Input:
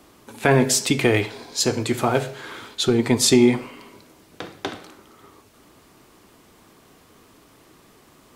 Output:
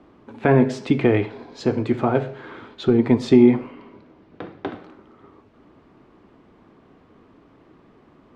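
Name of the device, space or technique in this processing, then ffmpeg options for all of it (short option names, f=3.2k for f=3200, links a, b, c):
phone in a pocket: -filter_complex "[0:a]lowpass=3.3k,equalizer=f=250:t=o:w=1.3:g=3.5,highshelf=f=2.3k:g=-11.5,asettb=1/sr,asplit=3[a][b][c];[a]atrim=end=3.734[d];[b]atrim=start=3.73:end=4.73,asetpts=PTS-STARTPTS,afade=t=in:d=0.004:c=qsin,afade=t=out:st=0.996:d=0.004:c=qsin,lowpass=6.2k[e];[c]atrim=start=4.726[f];[d][e]acrossfade=d=0.004:c1=hsin:c2=qsin[g];[g][f]acrossfade=d=0.004:c1=qsin:c2=hsin"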